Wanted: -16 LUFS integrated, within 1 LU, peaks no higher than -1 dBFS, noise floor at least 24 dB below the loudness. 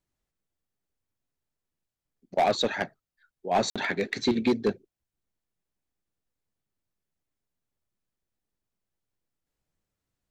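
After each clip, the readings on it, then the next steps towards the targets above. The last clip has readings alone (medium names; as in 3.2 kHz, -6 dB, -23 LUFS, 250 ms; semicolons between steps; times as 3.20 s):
clipped samples 0.4%; clipping level -17.0 dBFS; dropouts 1; longest dropout 56 ms; loudness -27.5 LUFS; peak level -17.0 dBFS; loudness target -16.0 LUFS
-> clip repair -17 dBFS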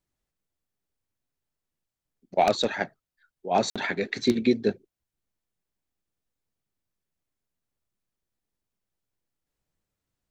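clipped samples 0.0%; dropouts 1; longest dropout 56 ms
-> interpolate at 3.70 s, 56 ms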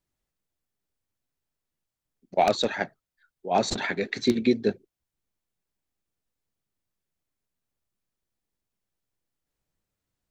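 dropouts 0; loudness -26.0 LUFS; peak level -8.0 dBFS; loudness target -16.0 LUFS
-> trim +10 dB; peak limiter -1 dBFS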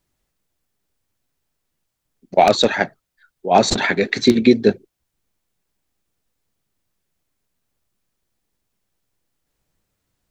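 loudness -16.5 LUFS; peak level -1.0 dBFS; noise floor -77 dBFS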